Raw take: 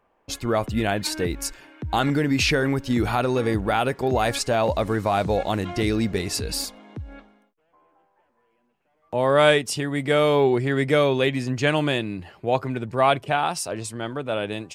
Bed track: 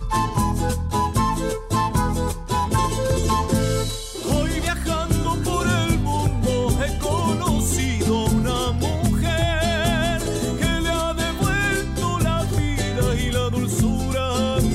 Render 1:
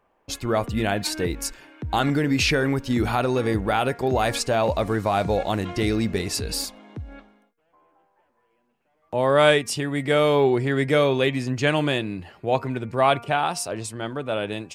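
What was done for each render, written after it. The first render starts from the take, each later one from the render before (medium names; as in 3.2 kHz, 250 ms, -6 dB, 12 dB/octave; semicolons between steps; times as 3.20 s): de-hum 235 Hz, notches 11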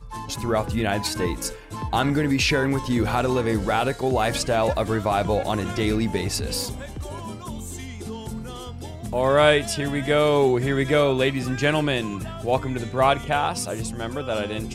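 add bed track -13.5 dB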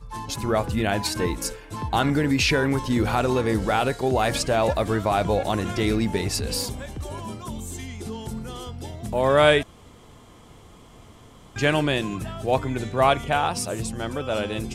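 9.63–11.56 s: room tone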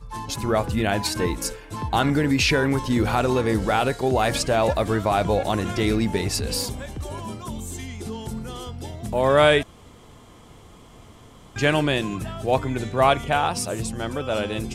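trim +1 dB; peak limiter -3 dBFS, peak gain reduction 2 dB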